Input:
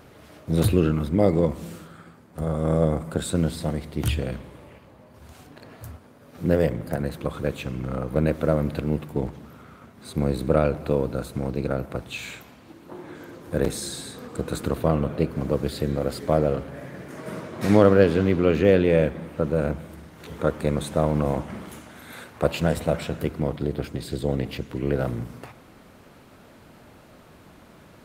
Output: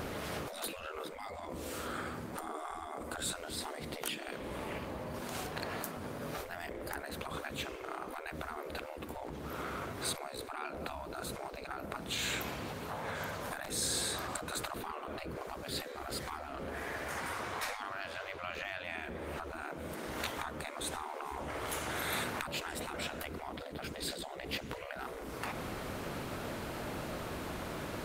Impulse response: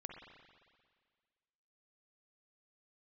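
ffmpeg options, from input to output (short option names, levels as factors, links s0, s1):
-af "acompressor=threshold=0.00891:ratio=3,afftfilt=real='re*lt(hypot(re,im),0.0224)':imag='im*lt(hypot(re,im),0.0224)':win_size=1024:overlap=0.75,volume=3.35"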